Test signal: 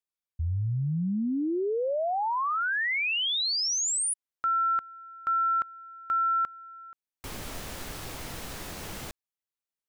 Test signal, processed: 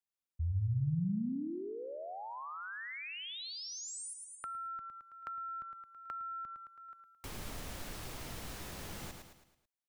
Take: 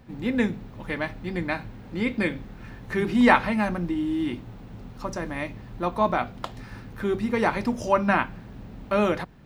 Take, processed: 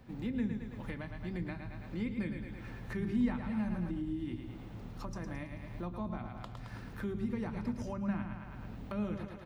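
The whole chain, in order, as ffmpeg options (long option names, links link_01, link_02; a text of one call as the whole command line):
ffmpeg -i in.wav -filter_complex "[0:a]aecho=1:1:109|218|327|436|545:0.422|0.19|0.0854|0.0384|0.0173,acrossover=split=220[link_01][link_02];[link_02]acompressor=threshold=-37dB:ratio=6:attack=7:release=504:knee=2.83:detection=peak[link_03];[link_01][link_03]amix=inputs=2:normalize=0,volume=-5dB" out.wav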